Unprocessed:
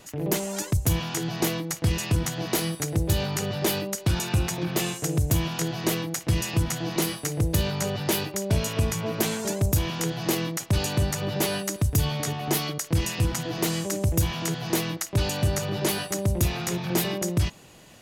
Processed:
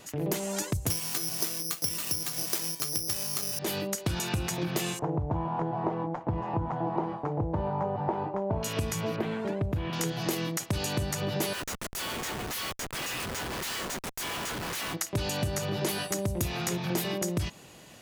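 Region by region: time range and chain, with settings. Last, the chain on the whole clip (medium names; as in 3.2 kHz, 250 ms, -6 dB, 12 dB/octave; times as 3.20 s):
0.90–3.59 s: high-pass 110 Hz + careless resampling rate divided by 8×, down none, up zero stuff
4.99–8.63 s: CVSD coder 64 kbps + resonant low-pass 890 Hz, resonance Q 4.3
9.16–9.93 s: distance through air 500 m + tape noise reduction on one side only encoder only
11.53–14.94 s: high-pass 1.1 kHz 24 dB/octave + Schmitt trigger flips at -36.5 dBFS
whole clip: bass shelf 64 Hz -7.5 dB; compression, threshold -26 dBFS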